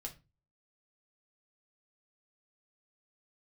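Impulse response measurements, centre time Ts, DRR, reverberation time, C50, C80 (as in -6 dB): 10 ms, 1.0 dB, 0.30 s, 15.0 dB, 22.0 dB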